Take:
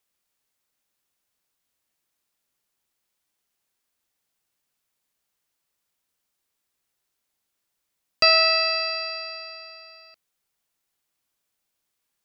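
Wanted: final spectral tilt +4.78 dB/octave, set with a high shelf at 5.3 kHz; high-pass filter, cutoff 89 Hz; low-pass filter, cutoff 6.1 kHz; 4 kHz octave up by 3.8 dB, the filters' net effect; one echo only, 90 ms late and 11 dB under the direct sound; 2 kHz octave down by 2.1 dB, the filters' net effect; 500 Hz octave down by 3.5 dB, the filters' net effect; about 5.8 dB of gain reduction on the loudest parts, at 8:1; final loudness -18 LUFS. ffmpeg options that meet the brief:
-af "highpass=89,lowpass=6100,equalizer=f=500:t=o:g=-5,equalizer=f=2000:t=o:g=-6.5,equalizer=f=4000:t=o:g=4.5,highshelf=f=5300:g=5,acompressor=threshold=0.141:ratio=8,aecho=1:1:90:0.282,volume=1.58"

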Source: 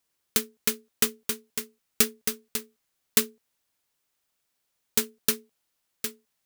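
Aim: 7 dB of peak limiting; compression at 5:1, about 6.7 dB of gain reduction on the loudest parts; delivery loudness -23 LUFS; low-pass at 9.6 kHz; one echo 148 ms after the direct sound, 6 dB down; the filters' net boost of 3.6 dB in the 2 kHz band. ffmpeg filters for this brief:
-af "lowpass=9600,equalizer=f=2000:t=o:g=4.5,acompressor=threshold=0.0501:ratio=5,alimiter=limit=0.178:level=0:latency=1,aecho=1:1:148:0.501,volume=5.31"

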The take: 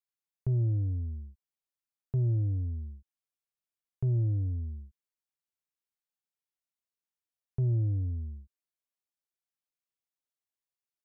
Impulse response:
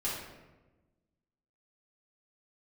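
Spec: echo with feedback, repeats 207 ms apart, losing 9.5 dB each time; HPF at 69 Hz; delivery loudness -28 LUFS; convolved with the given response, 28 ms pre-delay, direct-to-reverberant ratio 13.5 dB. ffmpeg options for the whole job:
-filter_complex "[0:a]highpass=69,aecho=1:1:207|414|621|828:0.335|0.111|0.0365|0.012,asplit=2[s0][s1];[1:a]atrim=start_sample=2205,adelay=28[s2];[s1][s2]afir=irnorm=-1:irlink=0,volume=0.119[s3];[s0][s3]amix=inputs=2:normalize=0,volume=1.58"

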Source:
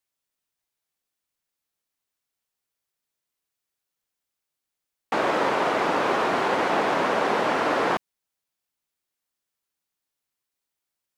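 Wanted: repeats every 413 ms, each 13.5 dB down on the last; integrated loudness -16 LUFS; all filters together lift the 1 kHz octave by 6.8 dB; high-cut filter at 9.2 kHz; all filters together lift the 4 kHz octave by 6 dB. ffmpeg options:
-af "lowpass=9200,equalizer=f=1000:t=o:g=8,equalizer=f=4000:t=o:g=7.5,aecho=1:1:413|826:0.211|0.0444,volume=1.33"

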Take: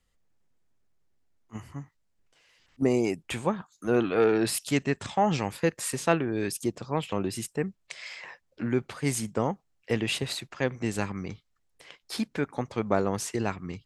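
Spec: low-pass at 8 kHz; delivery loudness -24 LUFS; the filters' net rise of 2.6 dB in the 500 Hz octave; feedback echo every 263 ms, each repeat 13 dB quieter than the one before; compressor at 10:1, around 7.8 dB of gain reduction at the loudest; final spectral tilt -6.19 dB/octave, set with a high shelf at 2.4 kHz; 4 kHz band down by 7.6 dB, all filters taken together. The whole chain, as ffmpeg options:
-af "lowpass=8000,equalizer=f=500:t=o:g=3.5,highshelf=f=2400:g=-7,equalizer=f=4000:t=o:g=-3.5,acompressor=threshold=0.0631:ratio=10,aecho=1:1:263|526|789:0.224|0.0493|0.0108,volume=2.66"

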